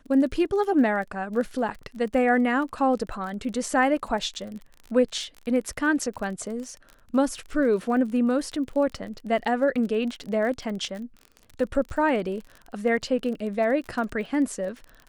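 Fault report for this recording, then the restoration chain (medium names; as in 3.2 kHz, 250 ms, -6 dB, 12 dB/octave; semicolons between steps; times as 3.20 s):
crackle 30 per s -33 dBFS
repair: de-click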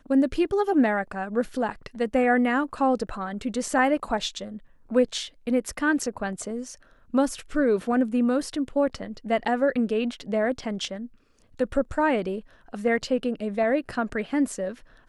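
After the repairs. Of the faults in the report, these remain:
nothing left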